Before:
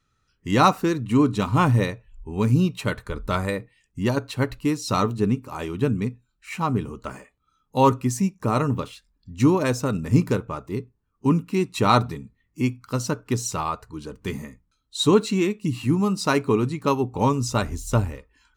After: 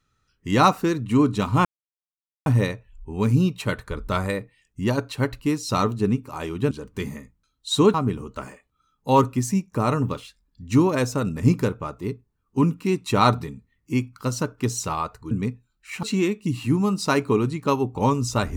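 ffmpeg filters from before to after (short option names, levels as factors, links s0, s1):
-filter_complex "[0:a]asplit=6[s0][s1][s2][s3][s4][s5];[s0]atrim=end=1.65,asetpts=PTS-STARTPTS,afade=t=out:st=1.646:d=0.004:c=hsin,apad=pad_dur=0.81[s6];[s1]atrim=start=1.65:end=5.902,asetpts=PTS-STARTPTS,afade=t=in:d=0.004:c=hsin[s7];[s2]atrim=start=13.988:end=15.222[s8];[s3]atrim=start=6.618:end=13.992[s9];[s4]atrim=start=5.898:end=6.622[s10];[s5]atrim=start=15.218[s11];[s6][s7]concat=n=2:v=0:a=1[s12];[s12][s8]acrossfade=d=0.004:c1=hsin:c2=hsin[s13];[s13][s9]acrossfade=d=0.004:c1=hsin:c2=hsin[s14];[s14][s10]acrossfade=d=0.004:c1=hsin:c2=hsin[s15];[s15][s11]acrossfade=d=0.004:c1=hsin:c2=hsin"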